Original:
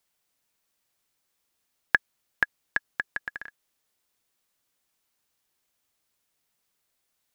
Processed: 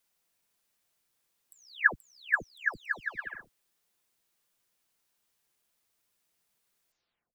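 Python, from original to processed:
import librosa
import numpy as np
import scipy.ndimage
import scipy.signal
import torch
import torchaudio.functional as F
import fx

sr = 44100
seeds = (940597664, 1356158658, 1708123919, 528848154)

y = fx.spec_delay(x, sr, highs='early', ms=426)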